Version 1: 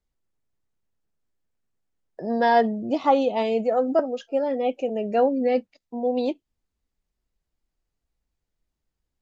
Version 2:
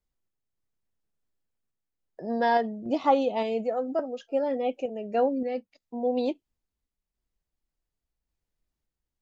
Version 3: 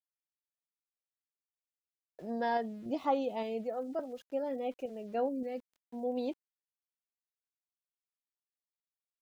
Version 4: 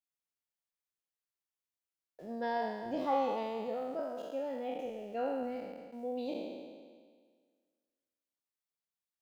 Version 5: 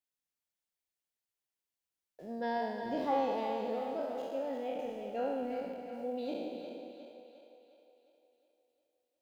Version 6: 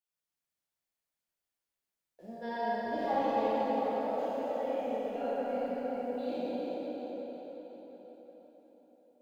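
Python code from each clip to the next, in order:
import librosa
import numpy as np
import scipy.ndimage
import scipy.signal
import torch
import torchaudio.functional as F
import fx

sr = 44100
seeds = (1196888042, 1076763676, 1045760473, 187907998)

y1 = fx.tremolo_random(x, sr, seeds[0], hz=3.5, depth_pct=55)
y1 = F.gain(torch.from_numpy(y1), -2.5).numpy()
y2 = fx.low_shelf(y1, sr, hz=180.0, db=5.0)
y2 = np.where(np.abs(y2) >= 10.0 ** (-48.5 / 20.0), y2, 0.0)
y2 = F.gain(torch.from_numpy(y2), -9.0).numpy()
y3 = fx.spec_trails(y2, sr, decay_s=1.71)
y3 = F.gain(torch.from_numpy(y3), -4.5).numpy()
y4 = fx.peak_eq(y3, sr, hz=1200.0, db=-4.5, octaves=0.42)
y4 = fx.echo_split(y4, sr, split_hz=380.0, low_ms=166, high_ms=357, feedback_pct=52, wet_db=-7.5)
y5 = fx.rev_plate(y4, sr, seeds[1], rt60_s=4.9, hf_ratio=0.45, predelay_ms=0, drr_db=-8.0)
y5 = F.gain(torch.from_numpy(y5), -6.0).numpy()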